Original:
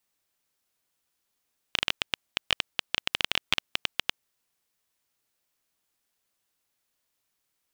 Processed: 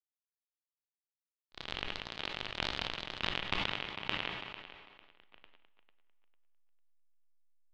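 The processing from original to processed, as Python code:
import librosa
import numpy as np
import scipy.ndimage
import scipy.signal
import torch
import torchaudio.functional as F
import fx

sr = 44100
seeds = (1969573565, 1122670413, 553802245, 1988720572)

p1 = fx.echo_pitch(x, sr, ms=94, semitones=2, count=3, db_per_echo=-3.0)
p2 = fx.rider(p1, sr, range_db=10, speed_s=0.5)
p3 = p1 + F.gain(torch.from_numpy(p2), 3.0).numpy()
p4 = fx.backlash(p3, sr, play_db=-23.5)
p5 = p4 + fx.echo_tape(p4, sr, ms=449, feedback_pct=28, wet_db=-9.5, lp_hz=4900.0, drive_db=-1.0, wow_cents=12, dry=0)
p6 = fx.auto_swell(p5, sr, attack_ms=498.0)
p7 = fx.spacing_loss(p6, sr, db_at_10k=28)
p8 = fx.rev_fdn(p7, sr, rt60_s=2.2, lf_ratio=0.85, hf_ratio=0.8, size_ms=48.0, drr_db=15.0)
p9 = fx.sustainer(p8, sr, db_per_s=32.0)
y = F.gain(torch.from_numpy(p9), 5.5).numpy()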